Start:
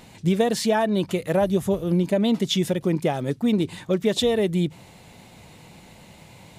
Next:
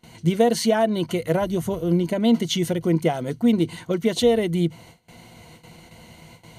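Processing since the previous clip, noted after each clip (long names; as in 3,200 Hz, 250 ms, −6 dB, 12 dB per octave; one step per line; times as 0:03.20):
EQ curve with evenly spaced ripples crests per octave 1.9, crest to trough 9 dB
noise gate with hold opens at −36 dBFS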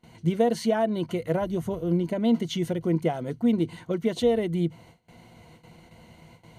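high-shelf EQ 2,800 Hz −8 dB
level −4 dB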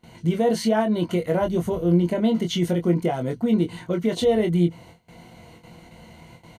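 brickwall limiter −17.5 dBFS, peak gain reduction 6 dB
double-tracking delay 23 ms −5 dB
level +4 dB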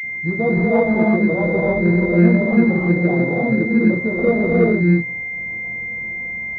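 reverb whose tail is shaped and stops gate 360 ms rising, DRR −3 dB
switching amplifier with a slow clock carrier 2,100 Hz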